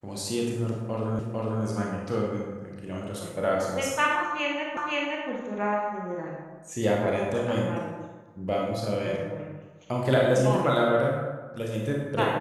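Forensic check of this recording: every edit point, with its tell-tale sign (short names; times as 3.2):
1.19 repeat of the last 0.45 s
4.77 repeat of the last 0.52 s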